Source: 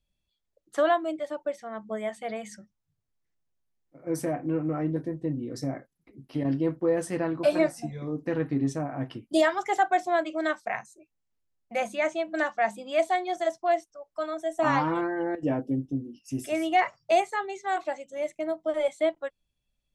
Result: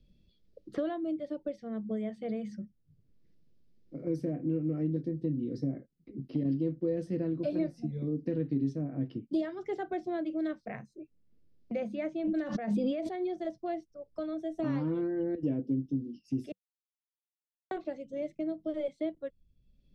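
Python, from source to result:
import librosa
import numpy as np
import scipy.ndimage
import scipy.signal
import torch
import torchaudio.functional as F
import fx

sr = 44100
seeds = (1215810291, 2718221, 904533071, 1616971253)

y = fx.pre_swell(x, sr, db_per_s=27.0, at=(12.21, 13.31))
y = fx.edit(y, sr, fx.silence(start_s=16.52, length_s=1.19), tone=tone)
y = fx.curve_eq(y, sr, hz=(110.0, 190.0, 500.0, 830.0, 5000.0, 7300.0), db=(0, 4, -3, -21, -10, -26))
y = fx.band_squash(y, sr, depth_pct=70)
y = F.gain(torch.from_numpy(y), -2.5).numpy()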